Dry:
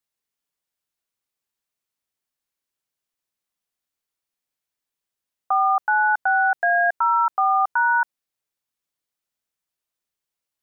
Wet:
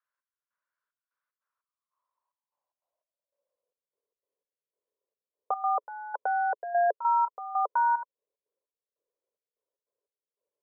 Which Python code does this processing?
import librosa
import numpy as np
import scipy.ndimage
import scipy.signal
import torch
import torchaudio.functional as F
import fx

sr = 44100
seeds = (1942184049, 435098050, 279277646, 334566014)

y = fx.filter_sweep_bandpass(x, sr, from_hz=1500.0, to_hz=430.0, start_s=1.32, end_s=3.95, q=6.1)
y = fx.small_body(y, sr, hz=(560.0, 1000.0), ring_ms=20, db=15)
y = fx.step_gate(y, sr, bpm=149, pattern='xx...xxxx..xx.', floor_db=-12.0, edge_ms=4.5)
y = F.gain(torch.from_numpy(y), 7.5).numpy()